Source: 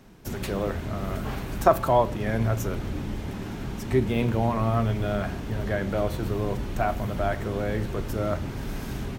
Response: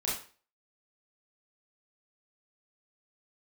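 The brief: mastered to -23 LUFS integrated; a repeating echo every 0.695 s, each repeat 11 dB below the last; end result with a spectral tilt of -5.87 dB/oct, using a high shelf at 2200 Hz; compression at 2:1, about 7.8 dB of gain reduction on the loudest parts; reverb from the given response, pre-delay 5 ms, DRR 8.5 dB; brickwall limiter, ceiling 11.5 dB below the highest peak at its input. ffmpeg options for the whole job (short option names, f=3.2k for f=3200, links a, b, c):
-filter_complex "[0:a]highshelf=f=2.2k:g=4.5,acompressor=threshold=-26dB:ratio=2,alimiter=limit=-21dB:level=0:latency=1,aecho=1:1:695|1390|2085:0.282|0.0789|0.0221,asplit=2[a][b];[1:a]atrim=start_sample=2205,adelay=5[c];[b][c]afir=irnorm=-1:irlink=0,volume=-14.5dB[d];[a][d]amix=inputs=2:normalize=0,volume=8dB"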